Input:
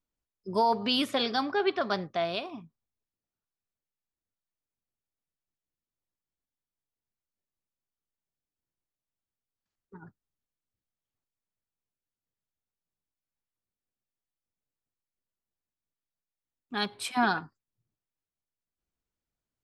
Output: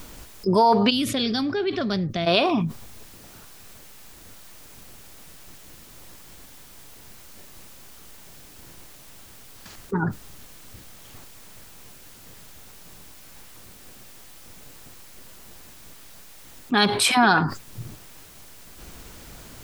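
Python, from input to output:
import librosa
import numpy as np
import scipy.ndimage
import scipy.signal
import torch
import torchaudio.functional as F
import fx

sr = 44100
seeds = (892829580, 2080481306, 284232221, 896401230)

y = fx.tone_stack(x, sr, knobs='10-0-1', at=(0.89, 2.26), fade=0.02)
y = fx.env_flatten(y, sr, amount_pct=70)
y = y * 10.0 ** (7.0 / 20.0)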